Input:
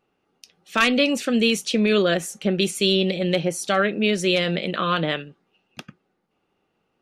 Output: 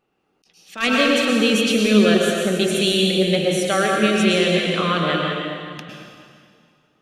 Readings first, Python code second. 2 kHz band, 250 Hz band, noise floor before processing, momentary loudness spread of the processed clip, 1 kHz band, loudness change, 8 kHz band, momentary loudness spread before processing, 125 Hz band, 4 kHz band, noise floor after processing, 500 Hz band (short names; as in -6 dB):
+3.5 dB, +4.0 dB, -73 dBFS, 9 LU, +3.0 dB, +3.5 dB, +3.5 dB, 5 LU, +3.5 dB, +3.5 dB, -67 dBFS, +3.5 dB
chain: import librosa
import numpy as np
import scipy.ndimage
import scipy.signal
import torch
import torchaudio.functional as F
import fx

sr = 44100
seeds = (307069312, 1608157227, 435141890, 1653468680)

y = fx.rev_plate(x, sr, seeds[0], rt60_s=2.2, hf_ratio=0.95, predelay_ms=95, drr_db=-1.0)
y = fx.attack_slew(y, sr, db_per_s=210.0)